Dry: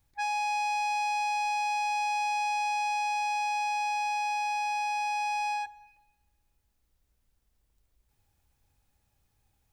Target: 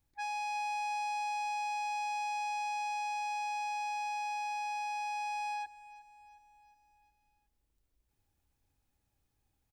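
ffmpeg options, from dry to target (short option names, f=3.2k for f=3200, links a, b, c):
-af "equalizer=f=300:t=o:w=0.75:g=6,aecho=1:1:362|724|1086|1448|1810:0.112|0.0617|0.0339|0.0187|0.0103,volume=-7dB"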